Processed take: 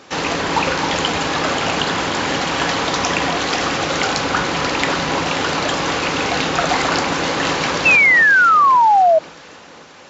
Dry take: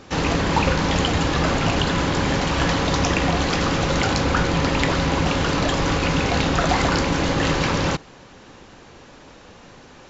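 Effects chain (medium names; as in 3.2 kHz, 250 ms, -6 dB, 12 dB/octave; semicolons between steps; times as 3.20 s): high-pass 480 Hz 6 dB/octave; on a send: echo whose repeats swap between lows and highs 267 ms, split 1.4 kHz, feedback 71%, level -6.5 dB; on the sum: painted sound fall, 7.85–9.19 s, 620–2700 Hz -15 dBFS; trim +4 dB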